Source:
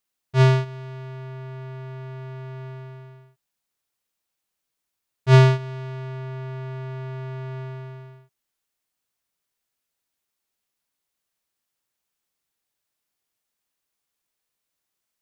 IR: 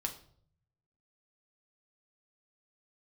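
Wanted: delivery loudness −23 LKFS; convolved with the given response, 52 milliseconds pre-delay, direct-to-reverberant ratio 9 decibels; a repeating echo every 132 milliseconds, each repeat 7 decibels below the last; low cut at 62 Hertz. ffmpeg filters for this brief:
-filter_complex "[0:a]highpass=62,aecho=1:1:132|264|396|528|660:0.447|0.201|0.0905|0.0407|0.0183,asplit=2[link_01][link_02];[1:a]atrim=start_sample=2205,adelay=52[link_03];[link_02][link_03]afir=irnorm=-1:irlink=0,volume=-10dB[link_04];[link_01][link_04]amix=inputs=2:normalize=0,volume=-0.5dB"

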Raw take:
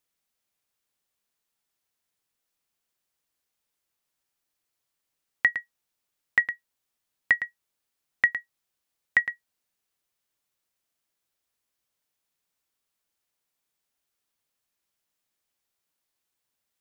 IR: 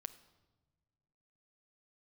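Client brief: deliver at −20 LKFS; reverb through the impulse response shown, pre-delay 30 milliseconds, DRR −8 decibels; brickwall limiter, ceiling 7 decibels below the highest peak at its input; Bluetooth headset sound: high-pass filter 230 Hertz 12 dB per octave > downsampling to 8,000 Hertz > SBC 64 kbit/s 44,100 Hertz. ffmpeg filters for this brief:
-filter_complex "[0:a]alimiter=limit=-15.5dB:level=0:latency=1,asplit=2[link_01][link_02];[1:a]atrim=start_sample=2205,adelay=30[link_03];[link_02][link_03]afir=irnorm=-1:irlink=0,volume=12dB[link_04];[link_01][link_04]amix=inputs=2:normalize=0,highpass=230,aresample=8000,aresample=44100,volume=4dB" -ar 44100 -c:a sbc -b:a 64k

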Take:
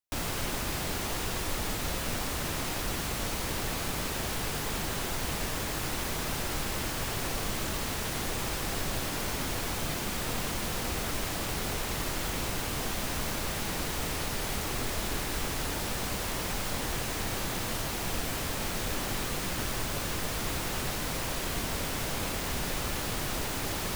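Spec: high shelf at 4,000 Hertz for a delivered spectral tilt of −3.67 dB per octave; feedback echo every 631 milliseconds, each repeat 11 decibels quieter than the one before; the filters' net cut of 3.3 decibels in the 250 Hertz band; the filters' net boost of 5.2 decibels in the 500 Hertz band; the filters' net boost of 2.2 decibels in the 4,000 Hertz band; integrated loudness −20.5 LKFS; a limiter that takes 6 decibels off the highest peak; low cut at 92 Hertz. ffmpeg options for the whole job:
ffmpeg -i in.wav -af "highpass=92,equalizer=frequency=250:width_type=o:gain=-7.5,equalizer=frequency=500:width_type=o:gain=8.5,highshelf=frequency=4000:gain=-9,equalizer=frequency=4000:width_type=o:gain=8,alimiter=level_in=1.5dB:limit=-24dB:level=0:latency=1,volume=-1.5dB,aecho=1:1:631|1262|1893:0.282|0.0789|0.0221,volume=13.5dB" out.wav

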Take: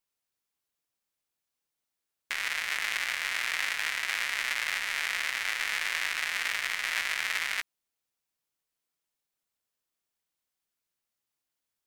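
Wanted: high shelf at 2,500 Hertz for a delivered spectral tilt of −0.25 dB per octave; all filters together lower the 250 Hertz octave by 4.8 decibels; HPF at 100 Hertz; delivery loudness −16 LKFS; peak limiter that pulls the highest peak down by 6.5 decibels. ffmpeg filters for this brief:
ffmpeg -i in.wav -af "highpass=100,equalizer=frequency=250:width_type=o:gain=-6.5,highshelf=frequency=2500:gain=-8,volume=20dB,alimiter=limit=-3.5dB:level=0:latency=1" out.wav

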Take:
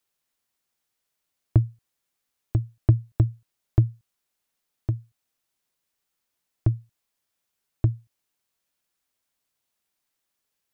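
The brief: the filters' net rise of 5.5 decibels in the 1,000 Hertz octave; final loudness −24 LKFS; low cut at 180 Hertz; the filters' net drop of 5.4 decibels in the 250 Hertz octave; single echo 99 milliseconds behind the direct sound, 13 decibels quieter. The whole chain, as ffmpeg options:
ffmpeg -i in.wav -af "highpass=180,equalizer=frequency=250:width_type=o:gain=-6.5,equalizer=frequency=1000:width_type=o:gain=8,aecho=1:1:99:0.224,volume=12dB" out.wav

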